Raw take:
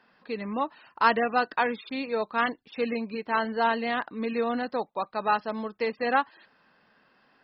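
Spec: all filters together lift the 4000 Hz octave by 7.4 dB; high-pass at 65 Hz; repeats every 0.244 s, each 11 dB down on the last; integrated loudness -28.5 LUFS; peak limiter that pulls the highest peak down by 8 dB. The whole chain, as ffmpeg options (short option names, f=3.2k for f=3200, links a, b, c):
-af "highpass=65,equalizer=f=4k:t=o:g=9,alimiter=limit=-14.5dB:level=0:latency=1,aecho=1:1:244|488|732:0.282|0.0789|0.0221"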